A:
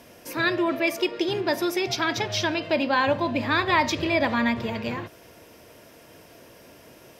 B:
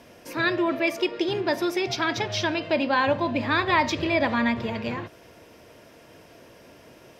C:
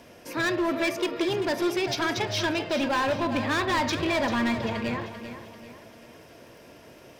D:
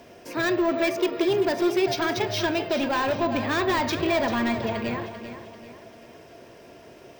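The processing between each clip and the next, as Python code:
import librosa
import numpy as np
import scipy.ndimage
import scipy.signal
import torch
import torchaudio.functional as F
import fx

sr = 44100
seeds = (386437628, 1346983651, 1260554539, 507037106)

y1 = fx.high_shelf(x, sr, hz=9300.0, db=-11.5)
y2 = np.clip(10.0 ** (22.0 / 20.0) * y1, -1.0, 1.0) / 10.0 ** (22.0 / 20.0)
y2 = fx.dmg_crackle(y2, sr, seeds[0], per_s=34.0, level_db=-47.0)
y2 = fx.echo_feedback(y2, sr, ms=391, feedback_pct=42, wet_db=-11)
y3 = fx.small_body(y2, sr, hz=(390.0, 680.0), ring_ms=45, db=7)
y3 = np.repeat(scipy.signal.resample_poly(y3, 1, 2), 2)[:len(y3)]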